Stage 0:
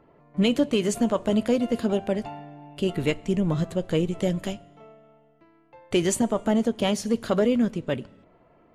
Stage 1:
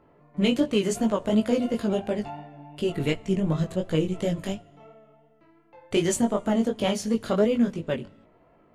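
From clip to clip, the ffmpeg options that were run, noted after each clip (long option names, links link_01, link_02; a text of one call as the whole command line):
ffmpeg -i in.wav -af "flanger=delay=18:depth=3.6:speed=2.8,volume=2dB" out.wav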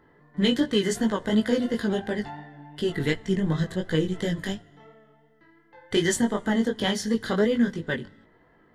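ffmpeg -i in.wav -af "superequalizer=8b=0.501:11b=3.16:12b=0.562:13b=1.78:14b=1.58" out.wav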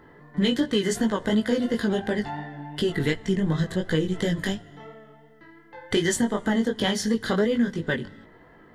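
ffmpeg -i in.wav -af "acompressor=threshold=-33dB:ratio=2,volume=7.5dB" out.wav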